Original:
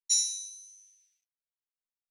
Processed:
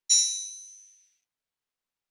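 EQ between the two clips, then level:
high-shelf EQ 7,200 Hz −10.5 dB
+9.0 dB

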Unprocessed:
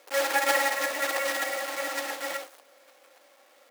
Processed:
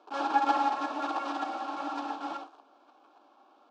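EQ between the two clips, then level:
high-frequency loss of the air 61 metres
head-to-tape spacing loss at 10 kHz 34 dB
phaser with its sweep stopped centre 530 Hz, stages 6
+7.5 dB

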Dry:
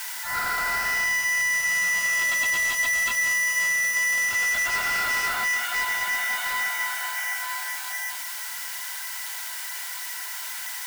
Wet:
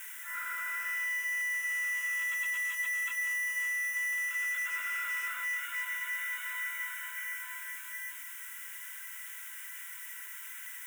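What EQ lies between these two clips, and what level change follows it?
high-pass filter 750 Hz 12 dB per octave
phaser with its sweep stopped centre 1,900 Hz, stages 4
−9.0 dB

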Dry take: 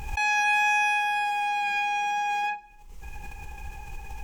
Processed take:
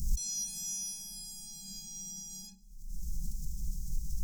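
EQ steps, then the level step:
elliptic band-stop filter 200–5,300 Hz, stop band 50 dB
phaser with its sweep stopped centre 440 Hz, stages 8
+7.5 dB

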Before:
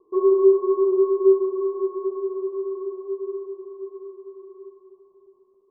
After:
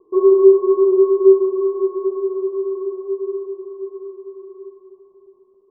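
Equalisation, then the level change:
Bessel low-pass filter 1,000 Hz
+6.0 dB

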